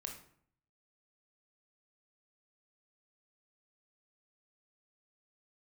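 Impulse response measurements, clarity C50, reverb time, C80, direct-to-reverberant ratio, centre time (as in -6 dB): 7.0 dB, 0.60 s, 11.0 dB, 2.0 dB, 22 ms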